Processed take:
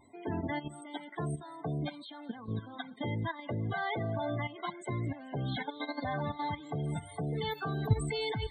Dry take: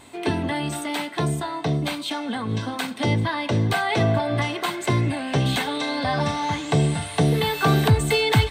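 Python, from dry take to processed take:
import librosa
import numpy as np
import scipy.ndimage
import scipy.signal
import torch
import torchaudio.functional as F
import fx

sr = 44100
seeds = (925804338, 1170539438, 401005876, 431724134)

y = fx.notch(x, sr, hz=2600.0, q=15.0)
y = fx.level_steps(y, sr, step_db=13)
y = fx.spec_topn(y, sr, count=32)
y = fx.echo_wet_highpass(y, sr, ms=214, feedback_pct=48, hz=3900.0, wet_db=-20)
y = y * librosa.db_to_amplitude(-7.5)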